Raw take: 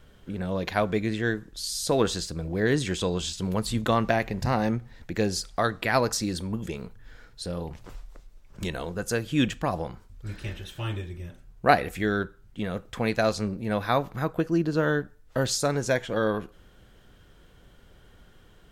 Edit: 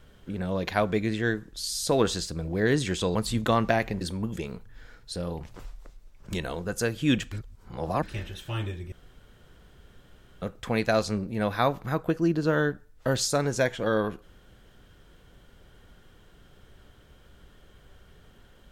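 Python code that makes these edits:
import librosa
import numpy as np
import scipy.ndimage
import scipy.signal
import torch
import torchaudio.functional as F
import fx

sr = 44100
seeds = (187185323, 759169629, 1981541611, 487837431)

y = fx.edit(x, sr, fx.cut(start_s=3.15, length_s=0.4),
    fx.cut(start_s=4.41, length_s=1.9),
    fx.reverse_span(start_s=9.62, length_s=0.71),
    fx.room_tone_fill(start_s=11.22, length_s=1.5), tone=tone)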